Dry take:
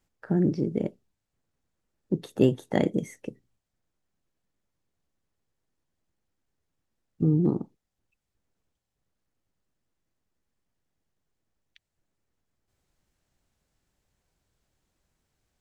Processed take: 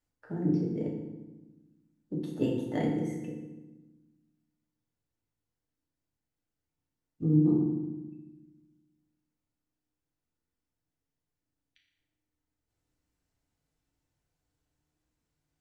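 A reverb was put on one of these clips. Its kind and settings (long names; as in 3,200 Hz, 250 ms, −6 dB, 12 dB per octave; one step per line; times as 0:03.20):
feedback delay network reverb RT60 1.1 s, low-frequency decay 1.55×, high-frequency decay 0.75×, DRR −3 dB
level −11.5 dB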